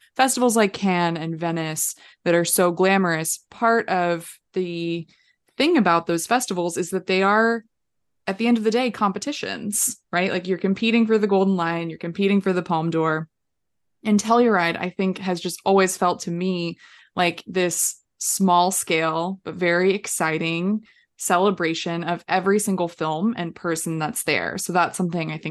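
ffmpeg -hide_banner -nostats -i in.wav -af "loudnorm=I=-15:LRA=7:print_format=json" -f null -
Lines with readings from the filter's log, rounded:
"input_i" : "-21.9",
"input_tp" : "-4.5",
"input_lra" : "1.9",
"input_thresh" : "-32.1",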